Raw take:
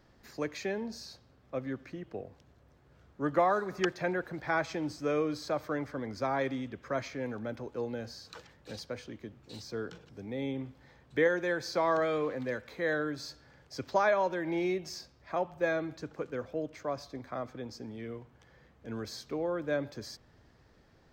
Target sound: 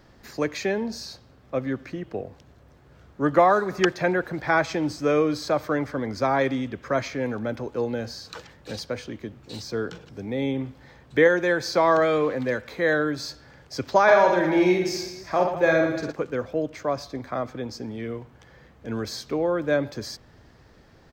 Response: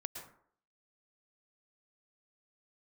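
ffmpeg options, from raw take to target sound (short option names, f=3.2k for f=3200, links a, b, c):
-filter_complex "[0:a]asplit=3[a][b][c];[a]afade=t=out:st=14.07:d=0.02[d];[b]aecho=1:1:50|115|199.5|309.4|452.2:0.631|0.398|0.251|0.158|0.1,afade=t=in:st=14.07:d=0.02,afade=t=out:st=16.11:d=0.02[e];[c]afade=t=in:st=16.11:d=0.02[f];[d][e][f]amix=inputs=3:normalize=0,volume=9dB"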